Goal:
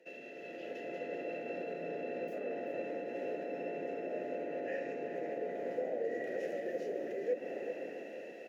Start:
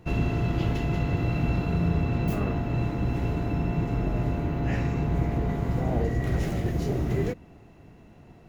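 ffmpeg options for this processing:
-filter_complex "[0:a]highpass=f=220:w=0.5412,highpass=f=220:w=1.3066,highshelf=f=4.1k:g=10.5,areverse,acompressor=threshold=-47dB:ratio=5,areverse,alimiter=level_in=19.5dB:limit=-24dB:level=0:latency=1:release=146,volume=-19.5dB,acrossover=split=1600[a][b];[a]dynaudnorm=f=130:g=11:m=9dB[c];[c][b]amix=inputs=2:normalize=0,aexciter=amount=1.1:drive=8.9:freq=5.1k,asplit=3[d][e][f];[d]bandpass=f=530:t=q:w=8,volume=0dB[g];[e]bandpass=f=1.84k:t=q:w=8,volume=-6dB[h];[f]bandpass=f=2.48k:t=q:w=8,volume=-9dB[i];[g][h][i]amix=inputs=3:normalize=0,aecho=1:1:388:0.316,volume=17dB"

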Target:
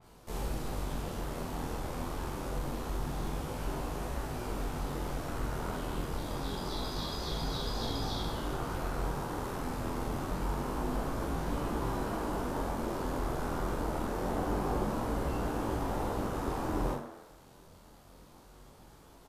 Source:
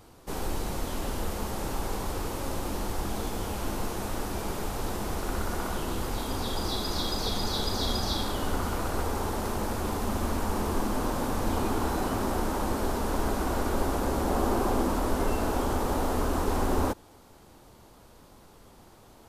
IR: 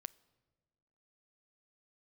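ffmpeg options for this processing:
-filter_complex "[0:a]asplit=2[a][b];[b]acompressor=threshold=-34dB:ratio=6,volume=-1.5dB[c];[a][c]amix=inputs=2:normalize=0,flanger=delay=7.1:depth=2.5:regen=58:speed=1.8:shape=sinusoidal,aeval=exprs='val(0)*sin(2*PI*41*n/s)':c=same,flanger=delay=17.5:depth=6.7:speed=0.26,asplit=2[d][e];[e]adelay=44,volume=-3.5dB[f];[d][f]amix=inputs=2:normalize=0,asplit=2[g][h];[h]asplit=6[i][j][k][l][m][n];[i]adelay=82,afreqshift=97,volume=-11dB[o];[j]adelay=164,afreqshift=194,volume=-16.4dB[p];[k]adelay=246,afreqshift=291,volume=-21.7dB[q];[l]adelay=328,afreqshift=388,volume=-27.1dB[r];[m]adelay=410,afreqshift=485,volume=-32.4dB[s];[n]adelay=492,afreqshift=582,volume=-37.8dB[t];[o][p][q][r][s][t]amix=inputs=6:normalize=0[u];[g][u]amix=inputs=2:normalize=0,adynamicequalizer=threshold=0.00178:dfrequency=3600:dqfactor=0.7:tfrequency=3600:tqfactor=0.7:attack=5:release=100:ratio=0.375:range=2:mode=cutabove:tftype=highshelf"

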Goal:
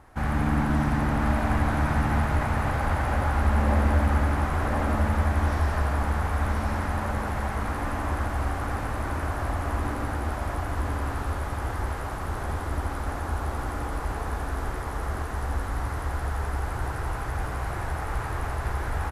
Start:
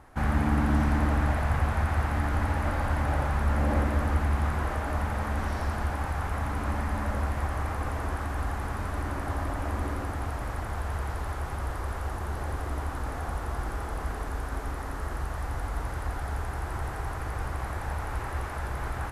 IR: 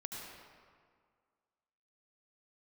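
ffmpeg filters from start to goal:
-filter_complex "[0:a]aecho=1:1:1037:0.668,asplit=2[a][b];[1:a]atrim=start_sample=2205,adelay=74[c];[b][c]afir=irnorm=-1:irlink=0,volume=-3dB[d];[a][d]amix=inputs=2:normalize=0"

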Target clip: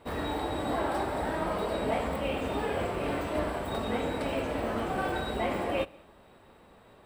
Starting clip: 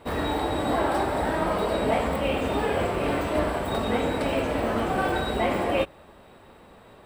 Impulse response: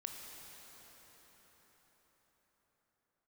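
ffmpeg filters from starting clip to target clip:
-filter_complex "[0:a]asplit=2[a][b];[1:a]atrim=start_sample=2205,afade=t=out:st=0.28:d=0.01,atrim=end_sample=12789[c];[b][c]afir=irnorm=-1:irlink=0,volume=-12dB[d];[a][d]amix=inputs=2:normalize=0,volume=-7dB"

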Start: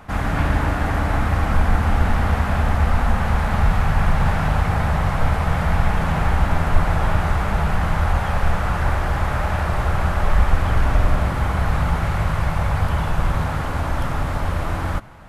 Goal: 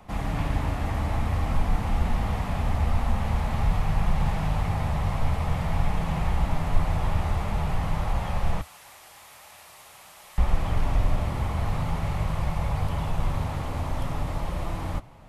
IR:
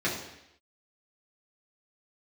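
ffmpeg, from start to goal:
-filter_complex "[0:a]asettb=1/sr,asplit=3[a][b][c];[a]atrim=end=8.614[d];[b]atrim=start=8.61:end=10.38,asetpts=PTS-STARTPTS,afade=t=in:d=0.004:c=qsin,afade=t=out:st=1.766:d=0.004:c=qsin,aderivative[e];[c]atrim=start=10.376[f];[d][e]acrossfade=d=0.004:c1=hsin:c2=qsin[g];[g][f]acrossfade=d=0.004:c1=qsin:c2=hsin,flanger=delay=5.4:depth=3.8:regen=-63:speed=0.48:shape=triangular,acrossover=split=240|770[h][i][j];[i]alimiter=level_in=8dB:limit=-24dB:level=0:latency=1,volume=-8dB[k];[j]equalizer=f=1.5k:w=2.8:g=-12[l];[h][k][l]amix=inputs=3:normalize=0,volume=-1.5dB"

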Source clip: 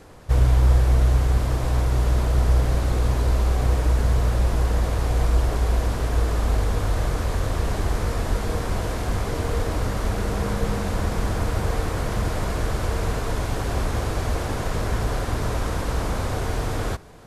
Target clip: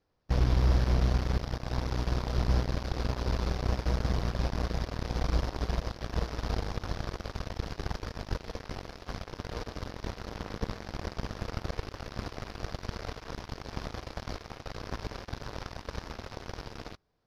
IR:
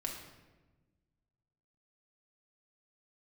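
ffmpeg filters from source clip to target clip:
-af "aeval=exprs='0.447*(cos(1*acos(clip(val(0)/0.447,-1,1)))-cos(1*PI/2))+0.0282*(cos(3*acos(clip(val(0)/0.447,-1,1)))-cos(3*PI/2))+0.0562*(cos(7*acos(clip(val(0)/0.447,-1,1)))-cos(7*PI/2))':c=same,highshelf=f=6.5k:t=q:w=3:g=-8,volume=-7.5dB"

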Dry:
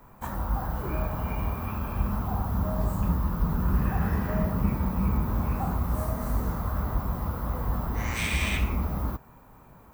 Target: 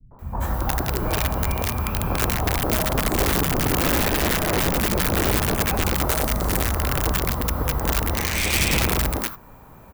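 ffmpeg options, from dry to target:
-filter_complex "[0:a]bandreject=f=50:t=h:w=6,bandreject=f=100:t=h:w=6,bandreject=f=150:t=h:w=6,bandreject=f=200:t=h:w=6,bandreject=f=250:t=h:w=6,bandreject=f=300:t=h:w=6,acrossover=split=200[a][b];[b]acompressor=threshold=-28dB:ratio=6[c];[a][c]amix=inputs=2:normalize=0,aeval=exprs='(mod(13.3*val(0)+1,2)-1)/13.3':c=same,acrossover=split=190|1100[d][e][f];[e]adelay=110[g];[f]adelay=190[h];[d][g][h]amix=inputs=3:normalize=0,volume=8dB"

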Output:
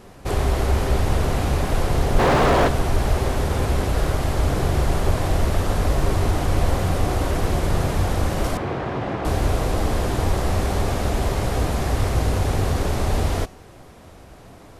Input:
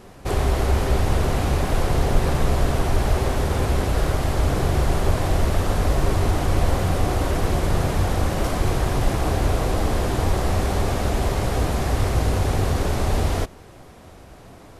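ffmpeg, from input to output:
-filter_complex "[0:a]asplit=3[a][b][c];[a]afade=t=out:st=2.18:d=0.02[d];[b]asplit=2[e][f];[f]highpass=f=720:p=1,volume=33dB,asoftclip=type=tanh:threshold=-7.5dB[g];[e][g]amix=inputs=2:normalize=0,lowpass=f=1.1k:p=1,volume=-6dB,afade=t=in:st=2.18:d=0.02,afade=t=out:st=2.67:d=0.02[h];[c]afade=t=in:st=2.67:d=0.02[i];[d][h][i]amix=inputs=3:normalize=0,asettb=1/sr,asplit=3[j][k][l];[j]atrim=end=8.574[m];[k]atrim=start=8.57:end=9.25,asetpts=PTS-STARTPTS,afade=t=in:d=0.004:c=qsin,afade=t=out:st=0.676:d=0.004:c=qsin,highpass=140,lowpass=2.5k[n];[l]atrim=start=9.246[o];[m][n]acrossfade=d=0.004:c1=hsin:c2=qsin[p];[p][o]acrossfade=d=0.004:c1=qsin:c2=hsin,bandreject=f=373.5:t=h:w=4,bandreject=f=747:t=h:w=4,bandreject=f=1.1205k:t=h:w=4,bandreject=f=1.494k:t=h:w=4,bandreject=f=1.8675k:t=h:w=4,bandreject=f=2.241k:t=h:w=4,bandreject=f=2.6145k:t=h:w=4,bandreject=f=2.988k:t=h:w=4,bandreject=f=3.3615k:t=h:w=4,bandreject=f=3.735k:t=h:w=4,bandreject=f=4.1085k:t=h:w=4,bandreject=f=4.482k:t=h:w=4,bandreject=f=4.8555k:t=h:w=4,bandreject=f=5.229k:t=h:w=4,bandreject=f=5.6025k:t=h:w=4,bandreject=f=5.976k:t=h:w=4,bandreject=f=6.3495k:t=h:w=4,bandreject=f=6.723k:t=h:w=4,bandreject=f=7.0965k:t=h:w=4,bandreject=f=7.47k:t=h:w=4,bandreject=f=7.8435k:t=h:w=4,bandreject=f=8.217k:t=h:w=4,bandreject=f=8.5905k:t=h:w=4,bandreject=f=8.964k:t=h:w=4,bandreject=f=9.3375k:t=h:w=4,bandreject=f=9.711k:t=h:w=4,bandreject=f=10.0845k:t=h:w=4,bandreject=f=10.458k:t=h:w=4,bandreject=f=10.8315k:t=h:w=4,bandreject=f=11.205k:t=h:w=4,bandreject=f=11.5785k:t=h:w=4,bandreject=f=11.952k:t=h:w=4,bandreject=f=12.3255k:t=h:w=4,bandreject=f=12.699k:t=h:w=4,bandreject=f=13.0725k:t=h:w=4,bandreject=f=13.446k:t=h:w=4"

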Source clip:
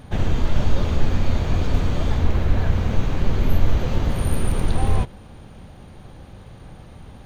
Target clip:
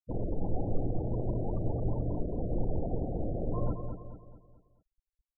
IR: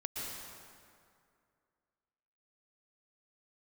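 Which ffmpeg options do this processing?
-filter_complex "[0:a]equalizer=f=350:w=0.76:g=9.5[a];[1:a]atrim=start_sample=2205,atrim=end_sample=3969,asetrate=74970,aresample=44100[b];[a][b]afir=irnorm=-1:irlink=0,afftfilt=real='re*gte(hypot(re,im),0.0794)':imag='im*gte(hypot(re,im),0.0794)':win_size=1024:overlap=0.75,asetrate=59535,aresample=44100,aecho=1:1:217|434|651|868|1085:0.447|0.197|0.0865|0.0381|0.0167,volume=-7dB"

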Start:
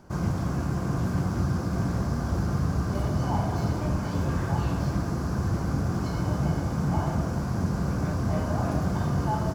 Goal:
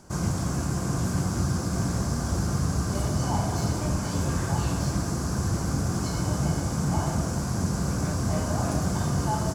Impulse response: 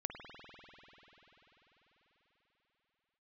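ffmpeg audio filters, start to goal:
-af "equalizer=f=8.2k:w=0.77:g=15"

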